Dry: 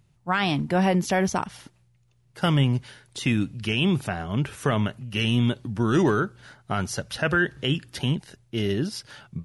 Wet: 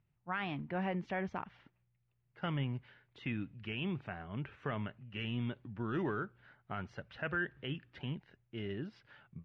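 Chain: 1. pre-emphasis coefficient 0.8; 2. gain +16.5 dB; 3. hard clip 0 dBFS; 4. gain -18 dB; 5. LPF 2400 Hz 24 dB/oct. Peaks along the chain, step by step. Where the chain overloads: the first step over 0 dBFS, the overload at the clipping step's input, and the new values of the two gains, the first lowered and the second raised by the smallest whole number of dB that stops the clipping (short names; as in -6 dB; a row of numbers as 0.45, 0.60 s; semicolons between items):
-21.0, -4.5, -4.5, -22.5, -25.5 dBFS; no overload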